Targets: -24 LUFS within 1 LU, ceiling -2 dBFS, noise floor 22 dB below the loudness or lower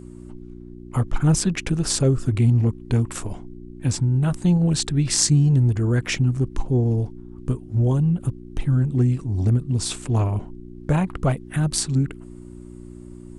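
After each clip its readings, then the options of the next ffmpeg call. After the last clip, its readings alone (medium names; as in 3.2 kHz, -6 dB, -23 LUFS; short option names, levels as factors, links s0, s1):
hum 60 Hz; highest harmonic 360 Hz; hum level -40 dBFS; loudness -21.5 LUFS; peak level -1.0 dBFS; loudness target -24.0 LUFS
-> -af "bandreject=f=60:t=h:w=4,bandreject=f=120:t=h:w=4,bandreject=f=180:t=h:w=4,bandreject=f=240:t=h:w=4,bandreject=f=300:t=h:w=4,bandreject=f=360:t=h:w=4"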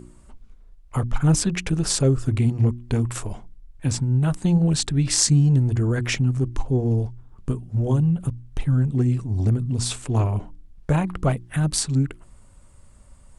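hum not found; loudness -22.5 LUFS; peak level -1.0 dBFS; loudness target -24.0 LUFS
-> -af "volume=0.841"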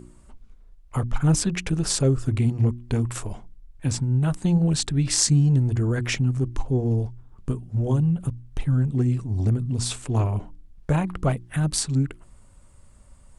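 loudness -24.0 LUFS; peak level -2.5 dBFS; noise floor -51 dBFS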